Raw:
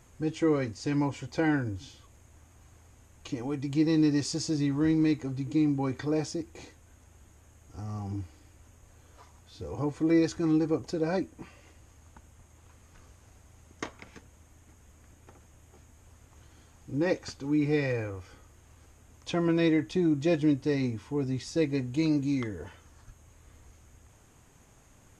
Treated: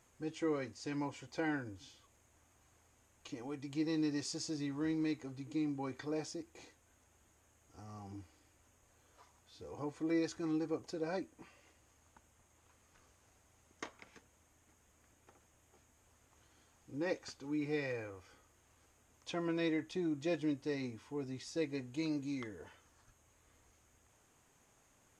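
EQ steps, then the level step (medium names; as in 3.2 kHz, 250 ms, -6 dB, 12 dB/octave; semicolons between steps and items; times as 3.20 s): bass shelf 200 Hz -11.5 dB; -7.5 dB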